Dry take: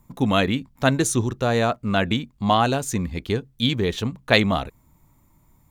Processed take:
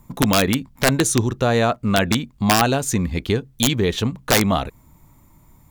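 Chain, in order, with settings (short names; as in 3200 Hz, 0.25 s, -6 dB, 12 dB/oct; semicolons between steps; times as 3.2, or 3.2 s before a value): in parallel at +1.5 dB: compressor 12:1, threshold -26 dBFS, peak gain reduction 16 dB; on the sum: wrapped overs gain 6.5 dB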